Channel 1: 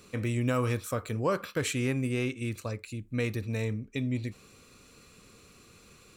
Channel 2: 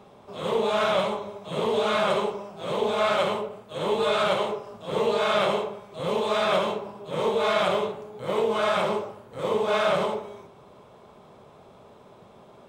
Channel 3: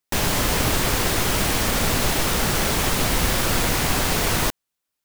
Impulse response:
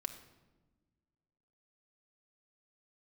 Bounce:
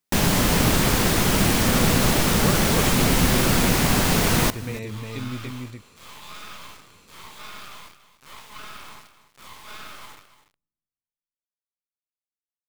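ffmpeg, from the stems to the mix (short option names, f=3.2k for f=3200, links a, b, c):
-filter_complex "[0:a]adelay=1200,volume=-1.5dB,asplit=2[a][b];[b]volume=-3dB[c];[1:a]highpass=f=1.1k:w=0.5412,highpass=f=1.1k:w=1.3066,acompressor=threshold=-30dB:ratio=6,acrusher=bits=4:dc=4:mix=0:aa=0.000001,volume=-3.5dB,asplit=3[d][e][f];[e]volume=-21dB[g];[f]volume=-13dB[h];[2:a]equalizer=f=190:w=1.2:g=7.5,volume=0dB,asplit=2[i][j];[j]volume=-19.5dB[k];[3:a]atrim=start_sample=2205[l];[g][l]afir=irnorm=-1:irlink=0[m];[c][h][k]amix=inputs=3:normalize=0,aecho=0:1:288:1[n];[a][d][i][m][n]amix=inputs=5:normalize=0"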